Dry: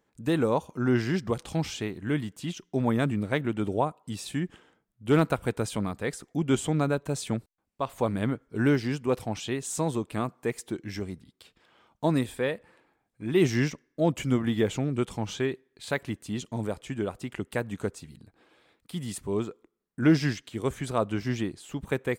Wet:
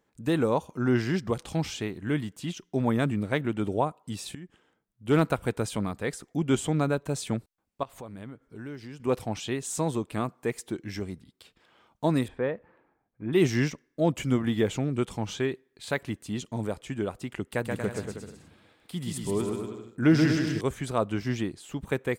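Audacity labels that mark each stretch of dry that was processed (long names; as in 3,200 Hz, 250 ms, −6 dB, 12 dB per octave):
4.350000	5.230000	fade in, from −17 dB
7.830000	9.000000	downward compressor 2.5 to 1, threshold −45 dBFS
12.280000	13.330000	low-pass filter 1,600 Hz
17.510000	20.610000	bouncing-ball delay first gap 130 ms, each gap 0.8×, echoes 6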